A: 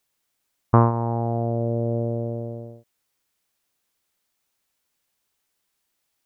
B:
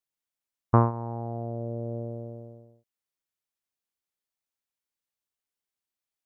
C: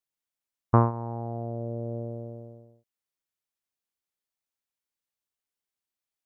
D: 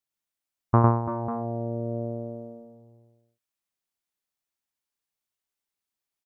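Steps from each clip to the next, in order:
expander for the loud parts 1.5 to 1, over −38 dBFS; level −3 dB
no processing that can be heard
notch filter 490 Hz, Q 12; multi-tap delay 103/338/350/545 ms −4.5/−12.5/−17/−13 dB

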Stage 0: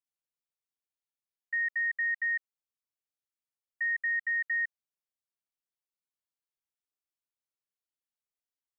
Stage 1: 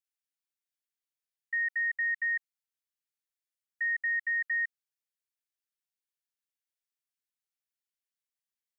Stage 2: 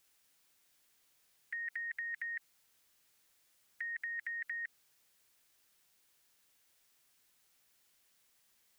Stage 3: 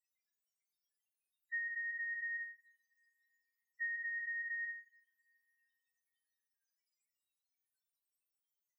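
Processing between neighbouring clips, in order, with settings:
Chebyshev high-pass filter 1,600 Hz, order 3
brickwall limiter −34 dBFS, peak gain reduction 8 dB; every bin compressed towards the loudest bin 2 to 1; level +4.5 dB
spectral peaks only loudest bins 2; coupled-rooms reverb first 0.47 s, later 2.5 s, from −27 dB, DRR 0.5 dB; level +1.5 dB

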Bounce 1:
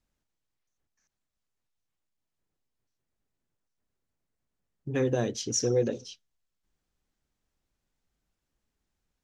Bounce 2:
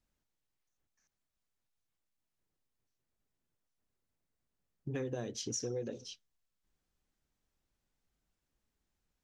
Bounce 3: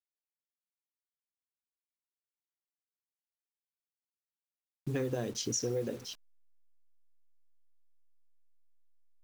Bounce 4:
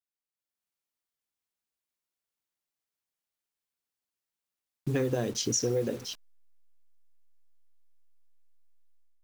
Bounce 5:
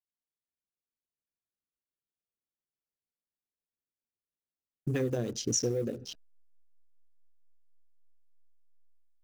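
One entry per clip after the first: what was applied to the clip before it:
downward compressor 5 to 1, threshold −33 dBFS, peak gain reduction 12 dB; level −2.5 dB
hold until the input has moved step −52.5 dBFS; level +4.5 dB
automatic gain control gain up to 9 dB; level −4 dB
adaptive Wiener filter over 41 samples; rotating-speaker cabinet horn 8 Hz, later 1.1 Hz, at 0:04.84

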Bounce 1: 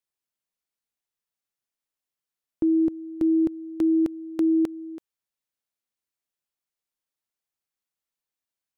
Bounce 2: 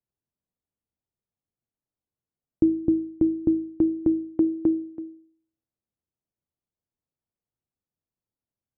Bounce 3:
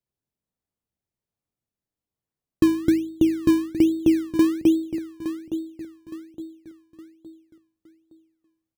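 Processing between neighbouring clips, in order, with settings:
Bessel low-pass filter 540 Hz, order 2; parametric band 100 Hz +9 dB 2.4 octaves; hum removal 53.81 Hz, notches 12; level +4.5 dB
repeating echo 865 ms, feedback 40%, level −11.5 dB; in parallel at −8 dB: sample-and-hold swept by an LFO 22×, swing 100% 1.2 Hz

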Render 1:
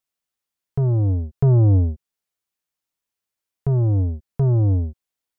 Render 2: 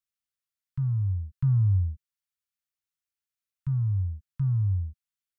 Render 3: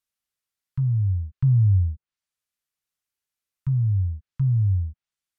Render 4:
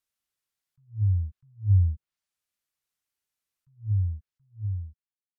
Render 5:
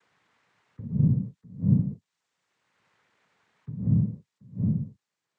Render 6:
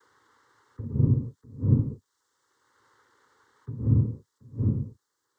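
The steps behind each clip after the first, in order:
inverse Chebyshev band-stop filter 300–660 Hz, stop band 50 dB; level −7.5 dB
treble cut that deepens with the level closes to 550 Hz, closed at −25 dBFS; level +4.5 dB
fade-out on the ending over 1.75 s; level that may rise only so fast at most 250 dB per second
cochlear-implant simulation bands 6; multiband upward and downward compressor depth 70%; level +7 dB
phaser with its sweep stopped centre 670 Hz, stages 6; level +9 dB

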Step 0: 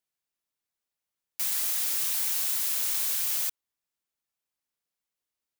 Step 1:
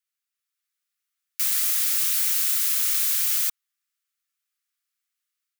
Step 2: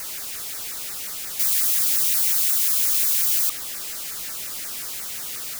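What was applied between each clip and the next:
Chebyshev high-pass filter 1,200 Hz, order 5; automatic gain control gain up to 4 dB; level +1.5 dB
converter with a step at zero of −24.5 dBFS; auto-filter notch saw down 5.6 Hz 900–3,600 Hz

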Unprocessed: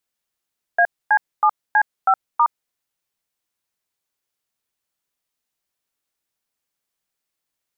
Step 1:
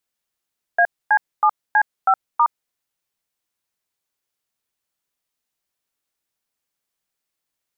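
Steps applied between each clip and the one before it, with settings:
no processing that can be heard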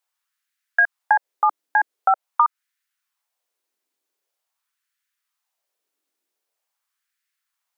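auto-filter high-pass sine 0.45 Hz 300–1,700 Hz
downward compressor, threshold −13 dBFS, peak gain reduction 7 dB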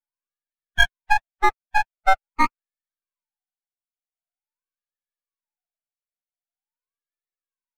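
three sine waves on the formant tracks
spectral peaks only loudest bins 16
half-wave rectification
level +3.5 dB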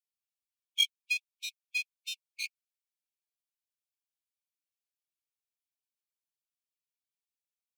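linear-phase brick-wall high-pass 2,200 Hz
level −1 dB

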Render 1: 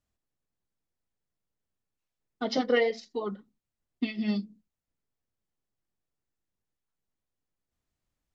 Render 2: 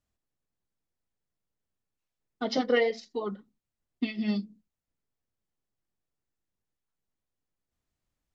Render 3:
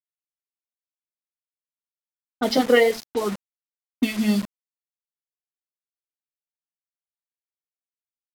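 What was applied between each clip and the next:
no processing that can be heard
bit reduction 7 bits; low-pass that shuts in the quiet parts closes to 650 Hz, open at −29.5 dBFS; level +8 dB

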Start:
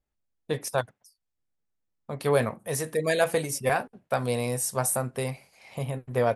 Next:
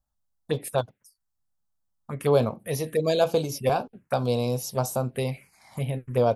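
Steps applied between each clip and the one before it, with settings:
phaser swept by the level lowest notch 390 Hz, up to 1,900 Hz, full sweep at −24.5 dBFS
level +3.5 dB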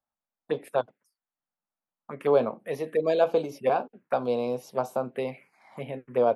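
three-way crossover with the lows and the highs turned down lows −24 dB, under 210 Hz, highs −18 dB, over 2,900 Hz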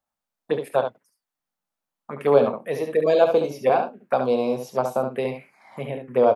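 ambience of single reflections 29 ms −14.5 dB, 70 ms −7 dB
level +4.5 dB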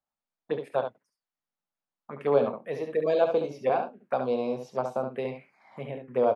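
high-frequency loss of the air 74 metres
level −6 dB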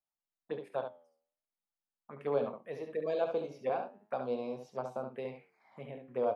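flanger 0.43 Hz, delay 6.4 ms, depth 6.2 ms, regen +87%
level −4 dB

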